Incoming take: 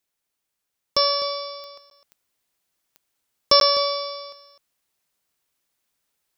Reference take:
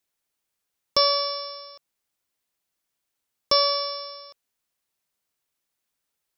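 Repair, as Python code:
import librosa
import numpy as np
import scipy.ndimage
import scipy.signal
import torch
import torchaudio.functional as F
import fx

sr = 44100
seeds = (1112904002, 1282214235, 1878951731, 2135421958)

y = fx.fix_declick_ar(x, sr, threshold=10.0)
y = fx.fix_interpolate(y, sr, at_s=(1.9, 3.6), length_ms=12.0)
y = fx.fix_echo_inverse(y, sr, delay_ms=254, level_db=-13.0)
y = fx.gain(y, sr, db=fx.steps((0.0, 0.0), (1.77, -4.5)))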